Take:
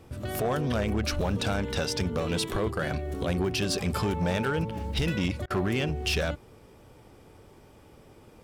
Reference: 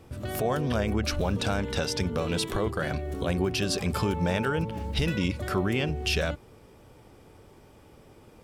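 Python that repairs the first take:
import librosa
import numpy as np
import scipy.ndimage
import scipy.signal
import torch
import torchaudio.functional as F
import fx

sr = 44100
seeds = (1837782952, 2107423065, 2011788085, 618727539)

y = fx.fix_declip(x, sr, threshold_db=-21.0)
y = fx.fix_interpolate(y, sr, at_s=(5.46,), length_ms=42.0)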